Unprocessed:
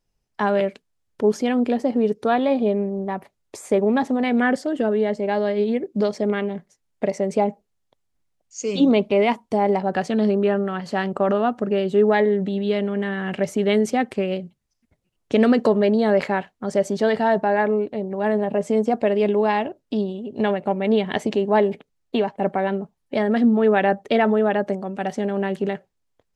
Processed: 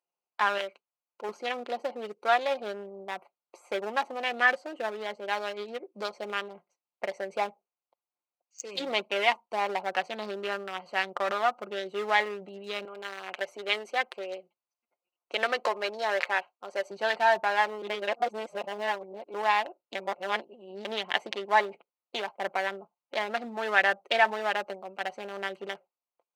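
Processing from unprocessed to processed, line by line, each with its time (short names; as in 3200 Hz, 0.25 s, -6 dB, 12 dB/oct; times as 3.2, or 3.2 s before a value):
0.58–1.29 low shelf 300 Hz -8 dB
12.85–16.91 HPF 320 Hz
17.82–19.34 reverse
19.95–20.85 reverse
whole clip: Wiener smoothing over 25 samples; HPF 1100 Hz 12 dB/oct; comb 5.7 ms, depth 42%; gain +3 dB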